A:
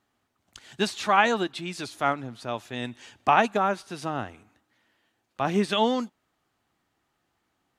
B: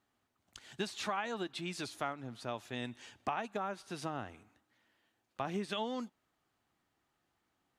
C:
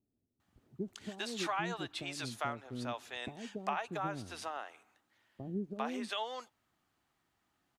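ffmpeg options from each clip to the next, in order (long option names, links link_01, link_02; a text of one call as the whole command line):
ffmpeg -i in.wav -af "acompressor=threshold=-28dB:ratio=6,volume=-5.5dB" out.wav
ffmpeg -i in.wav -filter_complex "[0:a]acrossover=split=460[link_01][link_02];[link_02]adelay=400[link_03];[link_01][link_03]amix=inputs=2:normalize=0,volume=1.5dB" out.wav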